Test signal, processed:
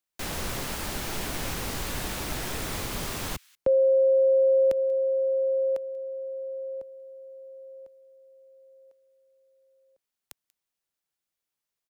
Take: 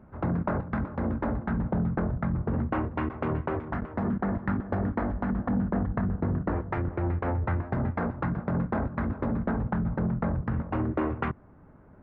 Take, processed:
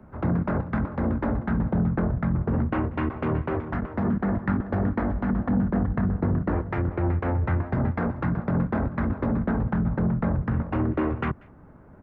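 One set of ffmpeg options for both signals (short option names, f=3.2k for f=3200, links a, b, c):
-filter_complex "[0:a]acrossover=split=100|450|1500[a][b][c][d];[c]alimiter=level_in=5.5dB:limit=-24dB:level=0:latency=1:release=74,volume=-5.5dB[e];[d]aecho=1:1:188:0.075[f];[a][b][e][f]amix=inputs=4:normalize=0,volume=4dB"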